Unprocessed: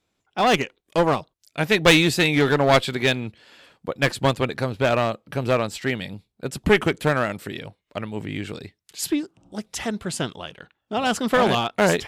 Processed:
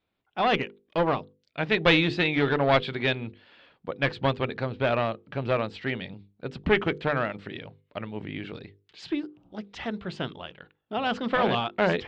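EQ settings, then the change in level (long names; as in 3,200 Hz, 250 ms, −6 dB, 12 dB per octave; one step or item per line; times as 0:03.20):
low-pass filter 3,900 Hz 24 dB per octave
mains-hum notches 50/100/150/200/250/300/350/400/450/500 Hz
−4.5 dB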